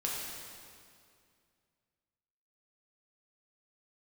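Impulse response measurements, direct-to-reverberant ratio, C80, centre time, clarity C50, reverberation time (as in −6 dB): −4.5 dB, 1.0 dB, 117 ms, −0.5 dB, 2.3 s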